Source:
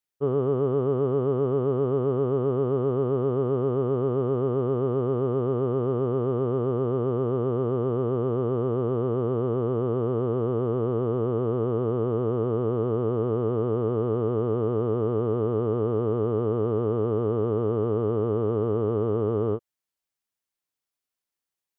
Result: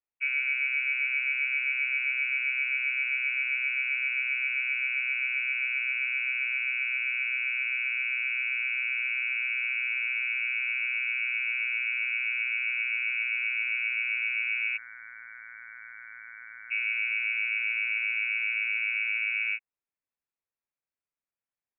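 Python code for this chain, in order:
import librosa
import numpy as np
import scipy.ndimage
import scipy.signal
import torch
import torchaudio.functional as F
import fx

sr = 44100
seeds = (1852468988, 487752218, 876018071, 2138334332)

y = fx.highpass(x, sr, hz=780.0, slope=24, at=(14.76, 16.7), fade=0.02)
y = fx.freq_invert(y, sr, carrier_hz=2700)
y = y * librosa.db_to_amplitude(-5.0)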